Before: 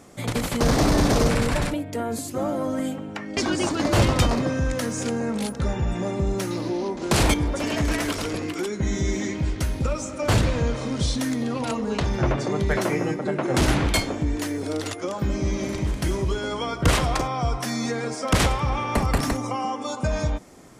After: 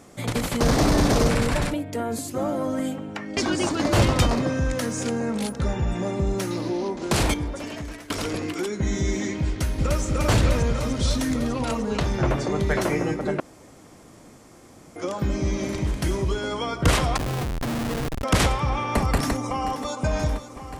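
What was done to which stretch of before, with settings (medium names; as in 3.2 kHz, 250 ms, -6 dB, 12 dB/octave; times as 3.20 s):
6.90–8.10 s: fade out, to -20.5 dB
9.48–10.02 s: echo throw 300 ms, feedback 80%, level -1 dB
13.40–14.96 s: room tone
17.17–18.24 s: Schmitt trigger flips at -24 dBFS
18.97–20.03 s: echo throw 530 ms, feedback 80%, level -13 dB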